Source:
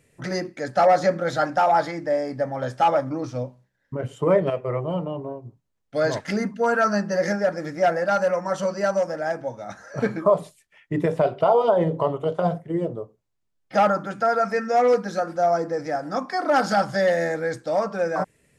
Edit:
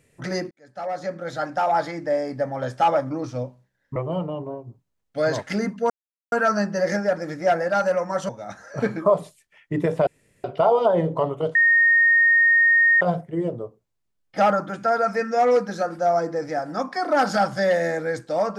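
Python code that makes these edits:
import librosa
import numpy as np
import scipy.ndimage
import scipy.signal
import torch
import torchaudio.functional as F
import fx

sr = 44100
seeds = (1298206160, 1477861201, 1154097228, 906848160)

y = fx.edit(x, sr, fx.fade_in_span(start_s=0.51, length_s=1.57),
    fx.cut(start_s=3.96, length_s=0.78),
    fx.insert_silence(at_s=6.68, length_s=0.42),
    fx.cut(start_s=8.65, length_s=0.84),
    fx.insert_room_tone(at_s=11.27, length_s=0.37),
    fx.insert_tone(at_s=12.38, length_s=1.46, hz=1850.0, db=-13.0), tone=tone)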